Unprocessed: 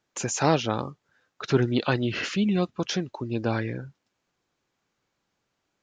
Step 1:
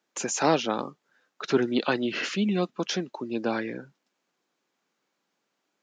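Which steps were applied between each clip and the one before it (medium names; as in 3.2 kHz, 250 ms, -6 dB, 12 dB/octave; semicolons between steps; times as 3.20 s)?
high-pass 190 Hz 24 dB/octave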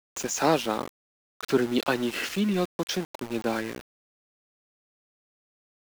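small samples zeroed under -33 dBFS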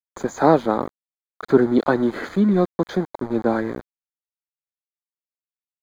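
boxcar filter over 16 samples; trim +8.5 dB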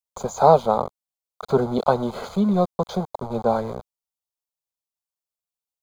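static phaser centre 740 Hz, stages 4; trim +4 dB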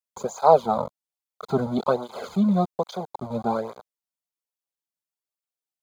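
cancelling through-zero flanger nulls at 1.2 Hz, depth 2.8 ms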